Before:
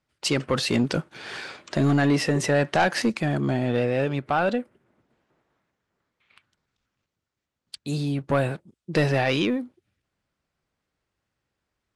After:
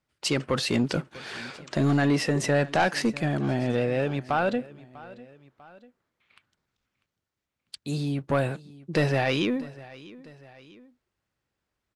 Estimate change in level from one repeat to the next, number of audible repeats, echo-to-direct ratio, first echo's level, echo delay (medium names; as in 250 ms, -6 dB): -5.5 dB, 2, -19.0 dB, -20.0 dB, 646 ms